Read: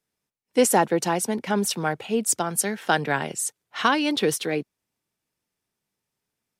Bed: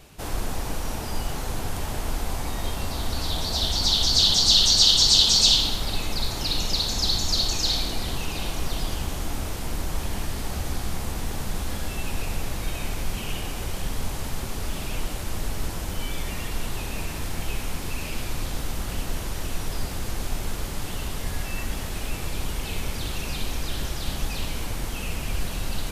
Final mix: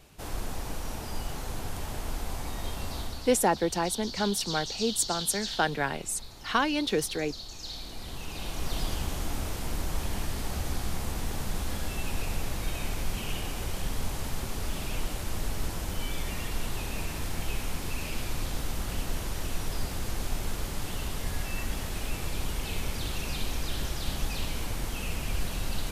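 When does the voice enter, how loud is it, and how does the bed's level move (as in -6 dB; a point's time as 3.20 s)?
2.70 s, -5.0 dB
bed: 2.99 s -6 dB
3.46 s -18.5 dB
7.44 s -18.5 dB
8.78 s -3 dB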